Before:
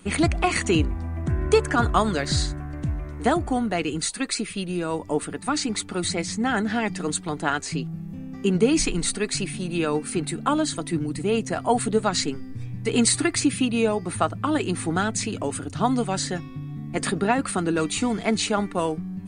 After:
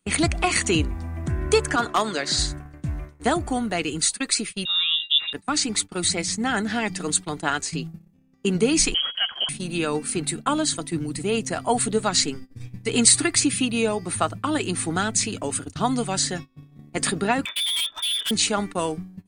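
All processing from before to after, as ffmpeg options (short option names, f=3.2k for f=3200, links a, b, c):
-filter_complex "[0:a]asettb=1/sr,asplit=3[a][b][c];[a]atrim=end=1.764[d];[b]atrim=start=1.76:end=2.39,asetpts=PTS-STARTPTS,afade=t=in:d=0.004:c=qsin,afade=t=out:st=0.626:d=0.004:c=qsin,highpass=250,lowpass=7.8k,asoftclip=type=hard:threshold=-11.5dB[e];[c]atrim=start=2.386[f];[d][e]acrossfade=d=0.004:c1=hsin:c2=qsin[g];[g][f]acrossfade=d=0.004:c1=qsin:c2=hsin,asettb=1/sr,asplit=3[h][i][j];[h]atrim=end=4.654[k];[i]atrim=start=4.65:end=5.33,asetpts=PTS-STARTPTS,afade=t=in:d=0.004:c=qsin,afade=t=out:st=0.676:d=0.004:c=qsin,aeval=exprs='val(0)+0.02*sin(2*PI*1100*n/s)':c=same,lowpass=f=3.3k:t=q:w=0.5098,lowpass=f=3.3k:t=q:w=0.6013,lowpass=f=3.3k:t=q:w=0.9,lowpass=f=3.3k:t=q:w=2.563,afreqshift=-3900[l];[j]atrim=start=5.326[m];[k][l]acrossfade=d=0.004:c1=hsin:c2=qsin[n];[n][m]acrossfade=d=0.004:c1=qsin:c2=hsin,asettb=1/sr,asplit=3[o][p][q];[o]atrim=end=8.944[r];[p]atrim=start=8.94:end=9.49,asetpts=PTS-STARTPTS,afade=t=in:d=0.004:c=qsin,afade=t=out:st=0.546:d=0.004:c=qsin,equalizer=f=1.7k:w=6.3:g=7.5,volume=20dB,asoftclip=hard,volume=-20dB,lowpass=f=2.8k:t=q:w=0.5098,lowpass=f=2.8k:t=q:w=0.6013,lowpass=f=2.8k:t=q:w=0.9,lowpass=f=2.8k:t=q:w=2.563,afreqshift=-3300[s];[q]atrim=start=9.486[t];[r][s]acrossfade=d=0.004:c1=hsin:c2=qsin[u];[u][t]acrossfade=d=0.004:c1=qsin:c2=hsin,asettb=1/sr,asplit=3[v][w][x];[v]atrim=end=17.454[y];[w]atrim=start=17.45:end=18.31,asetpts=PTS-STARTPTS,afade=t=in:d=0.004:c=qsin,afade=t=out:st=0.856:d=0.004:c=qsin,lowpass=f=3.1k:t=q:w=0.5098,lowpass=f=3.1k:t=q:w=0.6013,lowpass=f=3.1k:t=q:w=0.9,lowpass=f=3.1k:t=q:w=2.563,afreqshift=-3700,aecho=1:1:3.1:0.52,atrim=end_sample=37926,asoftclip=type=hard:threshold=-26.5dB[z];[x]atrim=start=18.306[aa];[y][z]acrossfade=d=0.004:c1=hsin:c2=qsin[ab];[ab][aa]acrossfade=d=0.004:c1=qsin:c2=hsin,agate=range=-25dB:threshold=-31dB:ratio=16:detection=peak,highshelf=f=2.7k:g=8.5,volume=-1.5dB"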